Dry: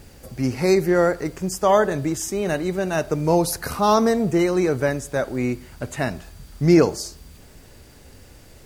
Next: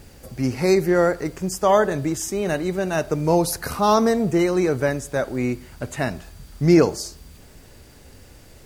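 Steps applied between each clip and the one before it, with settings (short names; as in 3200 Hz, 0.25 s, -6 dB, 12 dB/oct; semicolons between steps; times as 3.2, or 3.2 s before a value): nothing audible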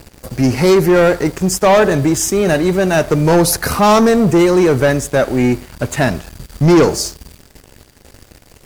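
sample leveller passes 3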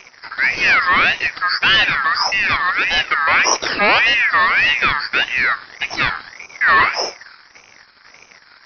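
nonlinear frequency compression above 2300 Hz 4:1; ring modulator with a swept carrier 1900 Hz, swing 25%, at 1.7 Hz; gain -1 dB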